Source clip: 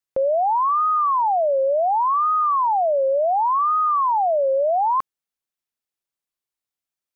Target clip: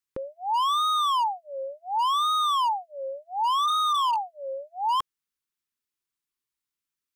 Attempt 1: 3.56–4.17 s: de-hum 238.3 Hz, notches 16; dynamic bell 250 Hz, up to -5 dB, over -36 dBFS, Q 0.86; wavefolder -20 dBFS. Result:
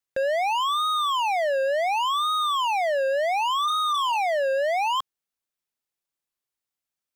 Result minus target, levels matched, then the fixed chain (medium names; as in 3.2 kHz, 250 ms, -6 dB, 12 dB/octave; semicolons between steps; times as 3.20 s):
500 Hz band +11.0 dB
3.56–4.17 s: de-hum 238.3 Hz, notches 16; dynamic bell 250 Hz, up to -5 dB, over -36 dBFS, Q 0.86; Butterworth band-stop 650 Hz, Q 1.4; wavefolder -20 dBFS